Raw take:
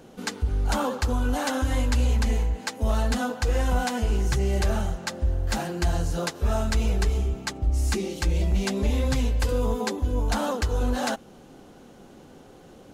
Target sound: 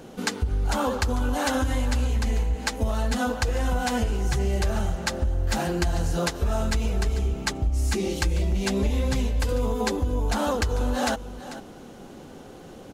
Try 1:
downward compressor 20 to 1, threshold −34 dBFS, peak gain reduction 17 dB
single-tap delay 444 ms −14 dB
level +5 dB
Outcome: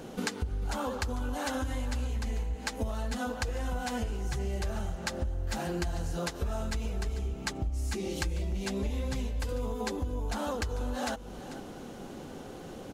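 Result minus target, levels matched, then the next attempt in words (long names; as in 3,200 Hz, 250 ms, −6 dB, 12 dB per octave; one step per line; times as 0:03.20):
downward compressor: peak gain reduction +8.5 dB
downward compressor 20 to 1, threshold −25 dBFS, peak gain reduction 8.5 dB
single-tap delay 444 ms −14 dB
level +5 dB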